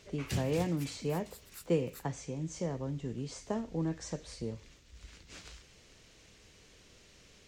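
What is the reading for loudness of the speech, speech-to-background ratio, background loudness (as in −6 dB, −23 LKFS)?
−36.5 LKFS, 17.5 dB, −54.0 LKFS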